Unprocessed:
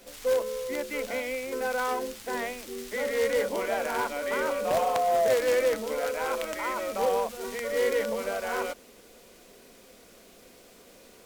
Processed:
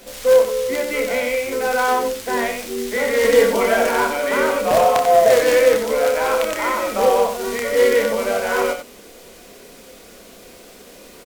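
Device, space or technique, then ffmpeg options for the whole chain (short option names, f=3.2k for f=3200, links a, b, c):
slapback doubling: -filter_complex "[0:a]asettb=1/sr,asplit=3[a][b][c];[a]atrim=end=3.244[d];[b]atrim=start=3.24:end=3.89,asetpts=PTS-STARTPTS,afade=t=in:d=0.004:c=qsin,afade=t=out:st=0.646:d=0.004:c=qsin,aecho=1:1:4.4:0.79,atrim=end_sample=28665[e];[c]atrim=start=3.886[f];[d][e]acrossfade=d=0.004:c1=hsin:c2=qsin[g];[g][f]acrossfade=d=0.004:c1=qsin:c2=hsin,asplit=3[h][i][j];[i]adelay=29,volume=-6dB[k];[j]adelay=91,volume=-7dB[l];[h][k][l]amix=inputs=3:normalize=0,volume=9dB"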